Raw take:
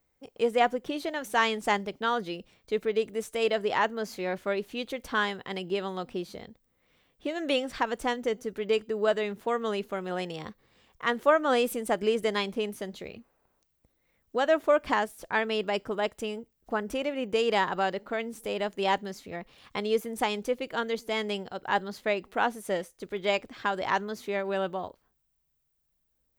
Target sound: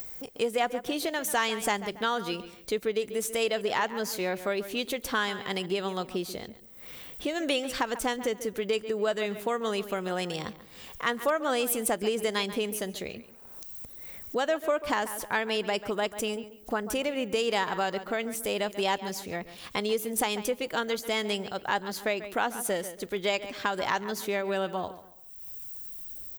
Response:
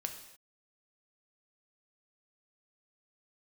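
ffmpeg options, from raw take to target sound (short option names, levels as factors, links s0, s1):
-filter_complex "[0:a]asoftclip=type=hard:threshold=0.251,acompressor=mode=upward:threshold=0.0112:ratio=2.5,asplit=2[s0][s1];[s1]adelay=139,lowpass=f=3300:p=1,volume=0.178,asplit=2[s2][s3];[s3]adelay=139,lowpass=f=3300:p=1,volume=0.31,asplit=2[s4][s5];[s5]adelay=139,lowpass=f=3300:p=1,volume=0.31[s6];[s2][s4][s6]amix=inputs=3:normalize=0[s7];[s0][s7]amix=inputs=2:normalize=0,acompressor=threshold=0.0316:ratio=2.5,crystalizer=i=2:c=0,volume=1.41"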